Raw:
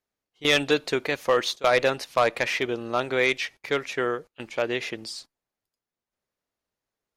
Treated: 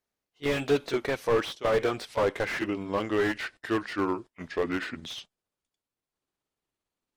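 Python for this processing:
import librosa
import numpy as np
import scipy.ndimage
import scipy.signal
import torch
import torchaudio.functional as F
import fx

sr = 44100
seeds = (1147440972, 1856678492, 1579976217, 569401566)

y = fx.pitch_glide(x, sr, semitones=-8.0, runs='starting unshifted')
y = fx.slew_limit(y, sr, full_power_hz=64.0)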